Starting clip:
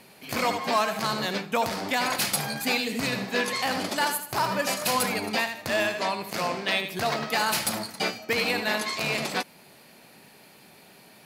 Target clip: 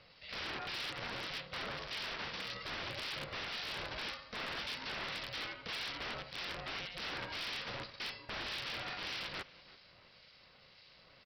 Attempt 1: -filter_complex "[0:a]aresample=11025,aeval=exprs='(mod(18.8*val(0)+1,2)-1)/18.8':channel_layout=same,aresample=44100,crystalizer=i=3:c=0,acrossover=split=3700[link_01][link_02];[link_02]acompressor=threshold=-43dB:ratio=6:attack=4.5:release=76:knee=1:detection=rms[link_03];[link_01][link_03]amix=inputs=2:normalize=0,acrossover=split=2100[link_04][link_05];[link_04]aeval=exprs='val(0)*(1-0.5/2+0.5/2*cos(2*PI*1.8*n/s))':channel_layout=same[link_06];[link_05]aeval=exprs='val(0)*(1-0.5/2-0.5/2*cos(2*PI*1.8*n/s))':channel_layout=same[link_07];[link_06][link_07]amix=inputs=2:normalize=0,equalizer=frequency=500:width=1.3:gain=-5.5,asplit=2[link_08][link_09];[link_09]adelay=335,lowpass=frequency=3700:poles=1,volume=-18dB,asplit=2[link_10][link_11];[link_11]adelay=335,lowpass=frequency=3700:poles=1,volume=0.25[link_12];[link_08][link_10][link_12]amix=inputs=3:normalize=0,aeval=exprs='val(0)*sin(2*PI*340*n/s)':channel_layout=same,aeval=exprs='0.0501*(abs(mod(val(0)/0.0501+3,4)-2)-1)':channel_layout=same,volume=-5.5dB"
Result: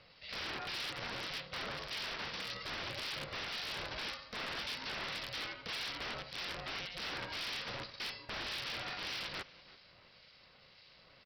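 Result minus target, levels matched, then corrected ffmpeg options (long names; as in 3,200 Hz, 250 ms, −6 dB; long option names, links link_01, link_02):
downward compressor: peak gain reduction −7 dB
-filter_complex "[0:a]aresample=11025,aeval=exprs='(mod(18.8*val(0)+1,2)-1)/18.8':channel_layout=same,aresample=44100,crystalizer=i=3:c=0,acrossover=split=3700[link_01][link_02];[link_02]acompressor=threshold=-51.5dB:ratio=6:attack=4.5:release=76:knee=1:detection=rms[link_03];[link_01][link_03]amix=inputs=2:normalize=0,acrossover=split=2100[link_04][link_05];[link_04]aeval=exprs='val(0)*(1-0.5/2+0.5/2*cos(2*PI*1.8*n/s))':channel_layout=same[link_06];[link_05]aeval=exprs='val(0)*(1-0.5/2-0.5/2*cos(2*PI*1.8*n/s))':channel_layout=same[link_07];[link_06][link_07]amix=inputs=2:normalize=0,equalizer=frequency=500:width=1.3:gain=-5.5,asplit=2[link_08][link_09];[link_09]adelay=335,lowpass=frequency=3700:poles=1,volume=-18dB,asplit=2[link_10][link_11];[link_11]adelay=335,lowpass=frequency=3700:poles=1,volume=0.25[link_12];[link_08][link_10][link_12]amix=inputs=3:normalize=0,aeval=exprs='val(0)*sin(2*PI*340*n/s)':channel_layout=same,aeval=exprs='0.0501*(abs(mod(val(0)/0.0501+3,4)-2)-1)':channel_layout=same,volume=-5.5dB"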